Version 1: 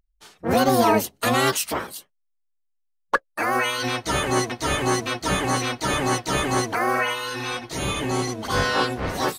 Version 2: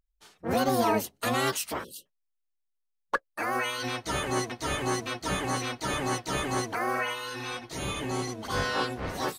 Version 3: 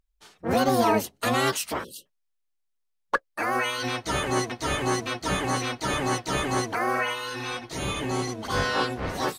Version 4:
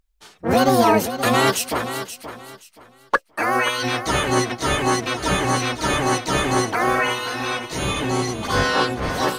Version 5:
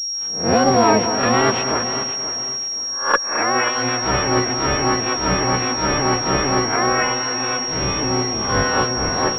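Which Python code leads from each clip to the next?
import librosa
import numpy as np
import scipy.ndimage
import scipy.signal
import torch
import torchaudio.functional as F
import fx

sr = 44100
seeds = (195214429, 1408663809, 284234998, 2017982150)

y1 = fx.spec_erase(x, sr, start_s=1.84, length_s=0.22, low_hz=600.0, high_hz=2600.0)
y1 = F.gain(torch.from_numpy(y1), -7.0).numpy()
y2 = fx.high_shelf(y1, sr, hz=11000.0, db=-5.0)
y2 = F.gain(torch.from_numpy(y2), 3.5).numpy()
y3 = fx.echo_feedback(y2, sr, ms=526, feedback_pct=25, wet_db=-11.0)
y3 = F.gain(torch.from_numpy(y3), 6.0).numpy()
y4 = fx.spec_swells(y3, sr, rise_s=0.41)
y4 = fx.echo_alternate(y4, sr, ms=215, hz=2000.0, feedback_pct=62, wet_db=-10.0)
y4 = fx.pwm(y4, sr, carrier_hz=5600.0)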